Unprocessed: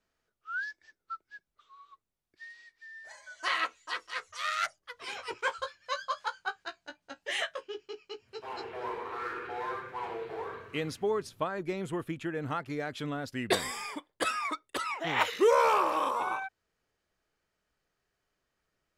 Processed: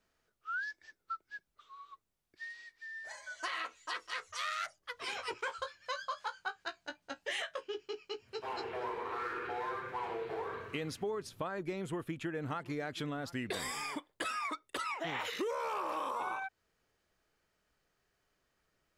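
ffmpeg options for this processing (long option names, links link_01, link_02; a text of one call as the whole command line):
ffmpeg -i in.wav -filter_complex "[0:a]asettb=1/sr,asplit=3[link_01][link_02][link_03];[link_01]atrim=end=11.734[link_04];[link_02]atrim=start=11.73:end=13.97,asetpts=PTS-STARTPTS,afade=type=in:duration=0.004:curve=qsin,afade=type=out:start_time=2.236:duration=0.004:curve=qsin,aecho=1:1:723:0.0708,atrim=end_sample=98784[link_05];[link_03]atrim=start=13.966[link_06];[link_04][link_05]acrossfade=duration=0.004:curve1=hsin:curve2=qsin[link_07];[link_07][link_06]acrossfade=duration=0.004:curve1=qsin:curve2=hsin,alimiter=limit=-23.5dB:level=0:latency=1:release=34,acompressor=threshold=-39dB:ratio=3,volume=2.5dB" out.wav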